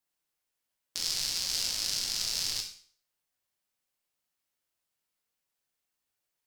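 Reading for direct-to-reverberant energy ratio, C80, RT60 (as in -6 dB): 1.0 dB, 11.5 dB, 0.50 s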